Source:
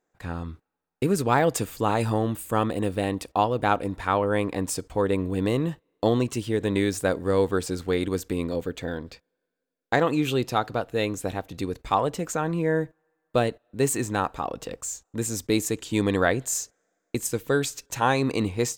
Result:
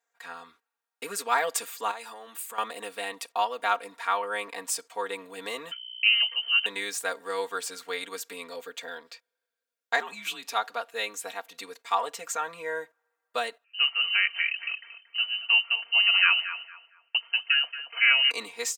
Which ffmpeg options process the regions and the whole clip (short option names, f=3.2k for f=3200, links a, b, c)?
-filter_complex "[0:a]asettb=1/sr,asplit=3[a][b][c];[a]atrim=end=1.914[d];[b]atrim=start=1.91:end=2.58,asetpts=PTS-STARTPTS,afade=t=in:d=0.004:c=qsin,afade=t=out:st=0.666:d=0.004:c=qsin,equalizer=f=140:w=2.1:g=-8,acompressor=threshold=-30dB:ratio=5:attack=3.2:release=140:knee=1:detection=peak[e];[c]atrim=start=2.576[f];[d][e]acrossfade=d=0.004:c1=hsin:c2=qsin[g];[g][f]acrossfade=d=0.004:c1=qsin:c2=hsin,asettb=1/sr,asplit=3[h][i][j];[h]atrim=end=5.714[k];[i]atrim=start=5.71:end=6.66,asetpts=PTS-STARTPTS,afade=t=in:d=0.004:c=qsin,afade=t=out:st=0.946:d=0.004:c=qsin,highpass=170,aeval=exprs='val(0)+0.0126*(sin(2*PI*60*n/s)+sin(2*PI*2*60*n/s)/2+sin(2*PI*3*60*n/s)/3+sin(2*PI*4*60*n/s)/4+sin(2*PI*5*60*n/s)/5)':c=same,lowpass=f=2.7k:t=q:w=0.5098,lowpass=f=2.7k:t=q:w=0.6013,lowpass=f=2.7k:t=q:w=0.9,lowpass=f=2.7k:t=q:w=2.563,afreqshift=-3200[l];[j]atrim=start=6.656[m];[k][l]acrossfade=d=0.004:c1=hsin:c2=qsin[n];[n][m]acrossfade=d=0.004:c1=qsin:c2=hsin,asettb=1/sr,asplit=3[o][p][q];[o]atrim=end=10.004[r];[p]atrim=start=10:end=10.53,asetpts=PTS-STARTPTS,afade=t=in:d=0.004:c=qsin,afade=t=out:st=0.526:d=0.004:c=qsin,acompressor=threshold=-24dB:ratio=6:attack=3.2:release=140:knee=1:detection=peak,afreqshift=-94[s];[q]atrim=start=10.526[t];[r][s]acrossfade=d=0.004:c1=hsin:c2=qsin[u];[u][t]acrossfade=d=0.004:c1=qsin:c2=hsin,asettb=1/sr,asplit=3[v][w][x];[v]atrim=end=13.644[y];[w]atrim=start=13.64:end=18.31,asetpts=PTS-STARTPTS,afade=t=in:d=0.004:c=qsin,afade=t=out:st=4.666:d=0.004:c=qsin,lowpass=f=2.6k:t=q:w=0.5098,lowpass=f=2.6k:t=q:w=0.6013,lowpass=f=2.6k:t=q:w=0.9,lowpass=f=2.6k:t=q:w=2.563,afreqshift=-3100,asplit=2[z][aa];[aa]adelay=229,lowpass=f=1.4k:p=1,volume=-8dB,asplit=2[ab][ac];[ac]adelay=229,lowpass=f=1.4k:p=1,volume=0.39,asplit=2[ad][ae];[ae]adelay=229,lowpass=f=1.4k:p=1,volume=0.39,asplit=2[af][ag];[ag]adelay=229,lowpass=f=1.4k:p=1,volume=0.39[ah];[z][ab][ad][af][ah]amix=inputs=5:normalize=0,atrim=end_sample=205947[ai];[x]atrim=start=18.306[aj];[y][ai]acrossfade=d=0.004:c1=hsin:c2=qsin[ak];[ak][aj]acrossfade=d=0.004:c1=qsin:c2=hsin,highpass=1k,aecho=1:1:4.3:0.94,volume=-1.5dB"